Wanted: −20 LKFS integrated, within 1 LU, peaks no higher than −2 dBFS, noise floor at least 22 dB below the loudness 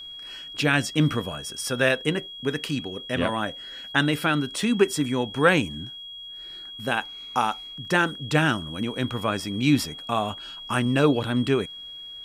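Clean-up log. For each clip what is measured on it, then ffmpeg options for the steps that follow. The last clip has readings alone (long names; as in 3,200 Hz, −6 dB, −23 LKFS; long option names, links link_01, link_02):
interfering tone 3,300 Hz; level of the tone −37 dBFS; integrated loudness −25.0 LKFS; sample peak −5.0 dBFS; target loudness −20.0 LKFS
→ -af "bandreject=frequency=3300:width=30"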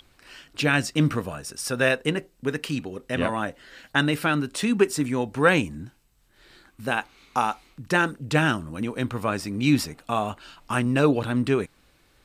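interfering tone none found; integrated loudness −25.0 LKFS; sample peak −5.0 dBFS; target loudness −20.0 LKFS
→ -af "volume=5dB,alimiter=limit=-2dB:level=0:latency=1"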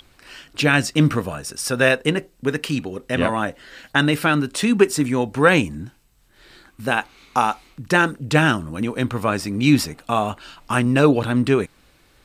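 integrated loudness −20.0 LKFS; sample peak −2.0 dBFS; background noise floor −57 dBFS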